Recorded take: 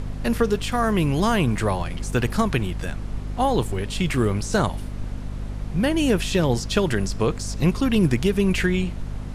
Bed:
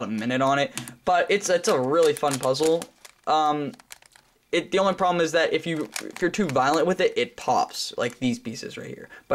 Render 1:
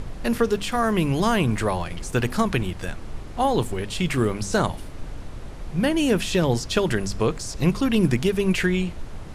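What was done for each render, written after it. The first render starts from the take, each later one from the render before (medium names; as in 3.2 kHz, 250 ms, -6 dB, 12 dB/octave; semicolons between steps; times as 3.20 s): hum notches 50/100/150/200/250 Hz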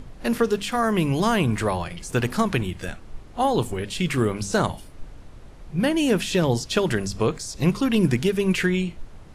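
noise print and reduce 8 dB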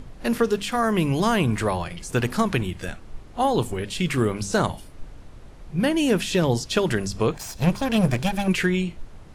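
7.33–8.48 s: comb filter that takes the minimum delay 1.2 ms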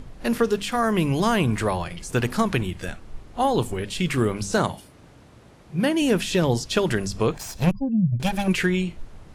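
4.57–6.02 s: high-pass 100 Hz; 7.71–8.20 s: spectral contrast enhancement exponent 3.5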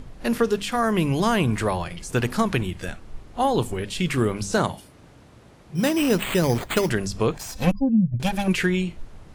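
5.75–6.90 s: careless resampling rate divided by 8×, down none, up hold; 7.52–8.14 s: comb 3.9 ms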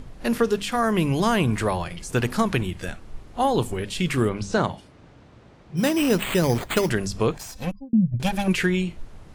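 4.29–5.77 s: distance through air 86 m; 7.29–7.93 s: fade out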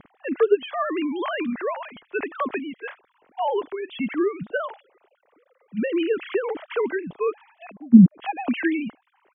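formants replaced by sine waves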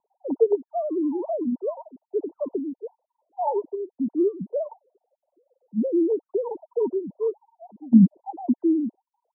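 formants replaced by sine waves; rippled Chebyshev low-pass 950 Hz, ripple 3 dB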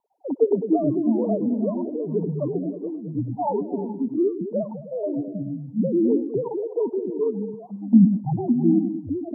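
ever faster or slower copies 124 ms, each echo -6 st, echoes 2; repeats whose band climbs or falls 105 ms, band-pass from 240 Hz, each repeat 0.7 oct, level -8 dB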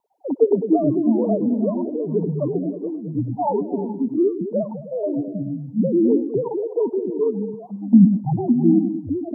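trim +3 dB; peak limiter -3 dBFS, peak gain reduction 1.5 dB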